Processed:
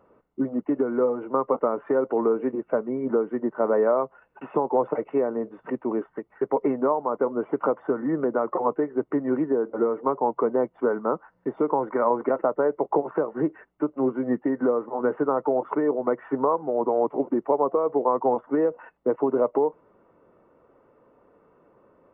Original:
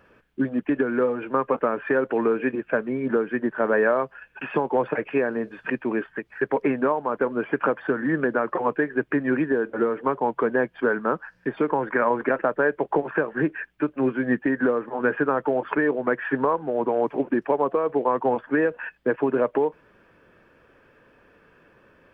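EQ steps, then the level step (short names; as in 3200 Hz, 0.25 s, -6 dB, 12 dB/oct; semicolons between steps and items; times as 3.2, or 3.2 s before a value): polynomial smoothing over 65 samples; low shelf 160 Hz -11.5 dB; +1.5 dB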